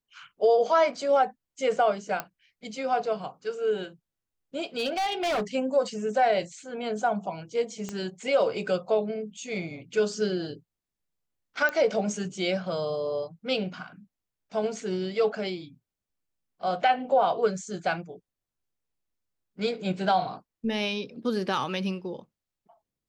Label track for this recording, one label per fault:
2.200000	2.200000	pop -14 dBFS
4.770000	5.430000	clipped -24 dBFS
7.890000	7.890000	pop -20 dBFS
11.690000	11.690000	pop -15 dBFS

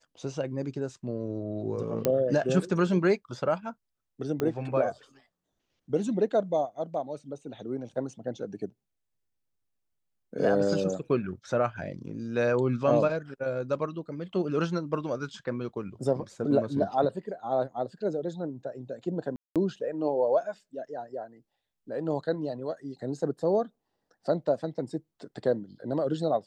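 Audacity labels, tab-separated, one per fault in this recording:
2.050000	2.050000	pop -11 dBFS
4.400000	4.400000	pop -16 dBFS
19.360000	19.560000	gap 0.197 s

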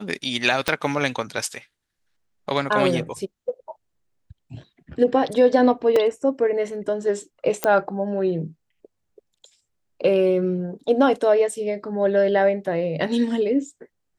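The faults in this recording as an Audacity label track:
0.680000	0.680000	pop -5 dBFS
5.960000	5.960000	gap 3.1 ms
7.640000	7.640000	pop -5 dBFS

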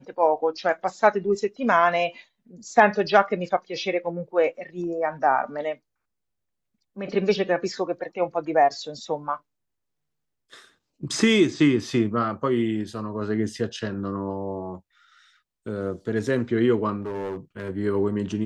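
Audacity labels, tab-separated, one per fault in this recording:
17.020000	17.700000	clipped -27 dBFS

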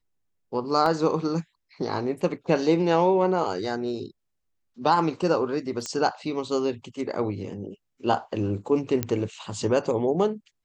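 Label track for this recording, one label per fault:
0.860000	0.860000	gap 2.3 ms
5.860000	5.860000	pop -18 dBFS
9.030000	9.030000	pop -11 dBFS

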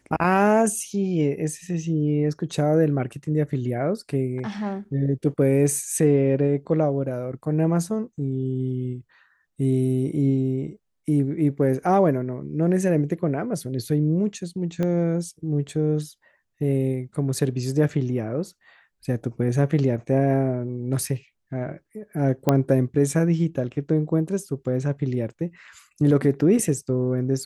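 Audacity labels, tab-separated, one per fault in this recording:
14.830000	14.830000	pop -15 dBFS
22.490000	22.490000	pop -6 dBFS

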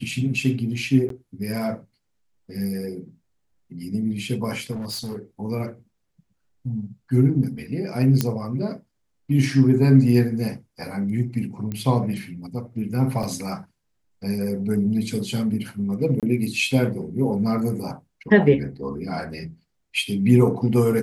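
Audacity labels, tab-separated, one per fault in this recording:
1.090000	1.100000	gap 13 ms
4.710000	5.160000	clipped -27 dBFS
8.210000	8.210000	pop -6 dBFS
11.720000	11.720000	pop -17 dBFS
13.230000	13.230000	gap 2.2 ms
16.200000	16.230000	gap 27 ms

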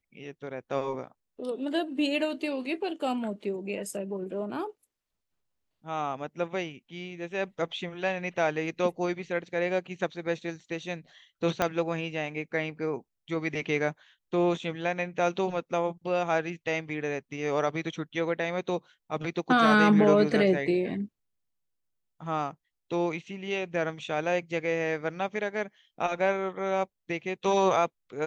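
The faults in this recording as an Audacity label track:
11.620000	11.620000	pop -11 dBFS

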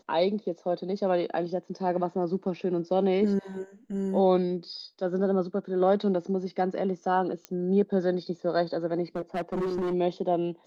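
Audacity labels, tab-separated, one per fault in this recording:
7.450000	7.450000	pop -20 dBFS
9.160000	9.940000	clipped -26 dBFS

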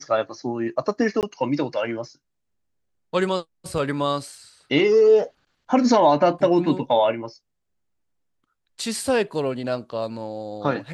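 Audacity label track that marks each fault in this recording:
1.210000	1.230000	gap 18 ms

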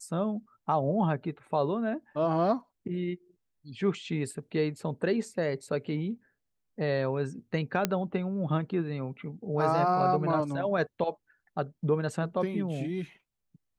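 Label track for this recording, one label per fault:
7.850000	7.850000	pop -10 dBFS

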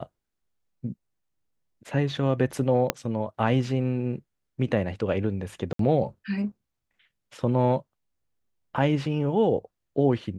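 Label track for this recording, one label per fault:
2.900000	2.900000	pop -6 dBFS
5.730000	5.790000	gap 63 ms

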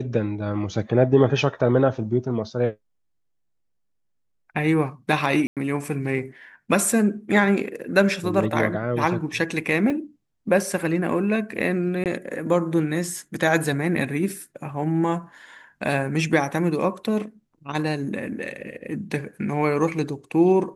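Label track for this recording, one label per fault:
5.470000	5.570000	gap 97 ms
9.900000	9.900000	gap 2.8 ms
12.040000	12.060000	gap 18 ms

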